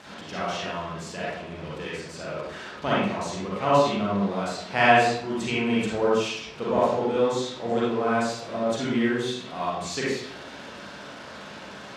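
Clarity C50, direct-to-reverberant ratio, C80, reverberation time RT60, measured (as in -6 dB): -3.0 dB, -8.0 dB, 2.0 dB, 0.75 s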